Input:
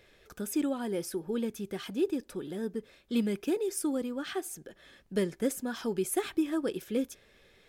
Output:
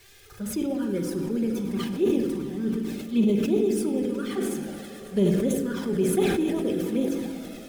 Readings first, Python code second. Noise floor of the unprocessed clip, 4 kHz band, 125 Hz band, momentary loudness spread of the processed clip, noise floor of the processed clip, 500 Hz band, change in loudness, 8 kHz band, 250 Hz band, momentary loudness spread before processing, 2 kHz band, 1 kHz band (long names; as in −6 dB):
−62 dBFS, +4.0 dB, +13.0 dB, 8 LU, −45 dBFS, +7.0 dB, +7.0 dB, +1.5 dB, +8.0 dB, 9 LU, +3.5 dB, +3.0 dB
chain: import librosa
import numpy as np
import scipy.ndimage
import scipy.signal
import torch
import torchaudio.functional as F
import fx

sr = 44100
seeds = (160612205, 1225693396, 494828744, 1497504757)

p1 = x + 0.5 * 10.0 ** (-35.5 / 20.0) * np.diff(np.sign(x), prepend=np.sign(x[:1]))
p2 = fx.lowpass(p1, sr, hz=3600.0, slope=6)
p3 = p2 + fx.echo_swell(p2, sr, ms=107, loudest=5, wet_db=-17.0, dry=0)
p4 = fx.env_flanger(p3, sr, rest_ms=2.9, full_db=-25.5)
p5 = fx.peak_eq(p4, sr, hz=94.0, db=12.0, octaves=1.0)
p6 = fx.backlash(p5, sr, play_db=-42.0)
p7 = p5 + F.gain(torch.from_numpy(p6), -9.5).numpy()
p8 = fx.room_shoebox(p7, sr, seeds[0], volume_m3=1600.0, walls='mixed', distance_m=1.2)
y = fx.sustainer(p8, sr, db_per_s=31.0)